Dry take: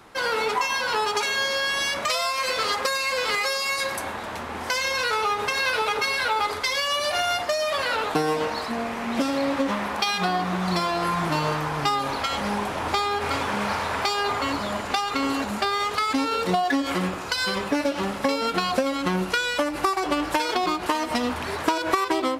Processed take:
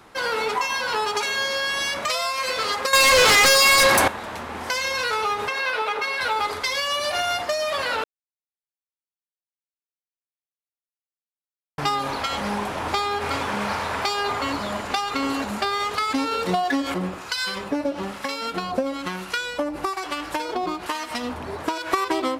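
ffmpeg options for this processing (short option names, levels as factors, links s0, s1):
-filter_complex "[0:a]asettb=1/sr,asplit=3[s0][s1][s2];[s0]atrim=end=2.934[s3];[s1]atrim=start=2.93:end=4.08,asetpts=PTS-STARTPTS,afade=t=in:d=0.004:c=qsin,afade=t=out:st=1.146:d=0.004:c=qsin,aeval=exprs='0.266*sin(PI/2*3.55*val(0)/0.266)':c=same[s4];[s2]atrim=start=4.076[s5];[s3][s4]acrossfade=d=0.004:c1=hsin:c2=qsin[s6];[s6][s5]acrossfade=d=0.004:c1=qsin:c2=hsin,asettb=1/sr,asplit=3[s7][s8][s9];[s7]atrim=end=5.484[s10];[s8]atrim=start=5.48:end=6.21,asetpts=PTS-STARTPTS,afade=t=in:d=0.004:c=qsin,afade=t=out:st=0.726:d=0.004:c=qsin,bass=f=250:g=-12,treble=f=4000:g=-9[s11];[s9]atrim=start=6.206[s12];[s10][s11]acrossfade=d=0.004:c1=hsin:c2=qsin[s13];[s13][s12]acrossfade=d=0.004:c1=qsin:c2=hsin,asettb=1/sr,asplit=3[s14][s15][s16];[s14]atrim=end=16.944[s17];[s15]atrim=start=16.94:end=21.92,asetpts=PTS-STARTPTS,afade=t=in:d=0.004:c=qsin,afade=t=out:st=4.976:d=0.004:c=qsin,acrossover=split=1000[s18][s19];[s18]aeval=exprs='val(0)*(1-0.7/2+0.7/2*cos(2*PI*1.1*n/s))':c=same[s20];[s19]aeval=exprs='val(0)*(1-0.7/2-0.7/2*cos(2*PI*1.1*n/s))':c=same[s21];[s20][s21]amix=inputs=2:normalize=0[s22];[s16]atrim=start=21.916[s23];[s17][s22]acrossfade=d=0.004:c1=hsin:c2=qsin[s24];[s24][s23]acrossfade=d=0.004:c1=qsin:c2=hsin,asplit=3[s25][s26][s27];[s25]atrim=end=8.04,asetpts=PTS-STARTPTS,afade=t=out:st=8.036:d=0.004:c=hsin[s28];[s26]atrim=start=8.04:end=11.78,asetpts=PTS-STARTPTS,volume=0[s29];[s27]atrim=start=11.78,asetpts=PTS-STARTPTS,afade=t=in:d=0.004:c=hsin[s30];[s28][s29][s30]concat=n=3:v=0:a=1"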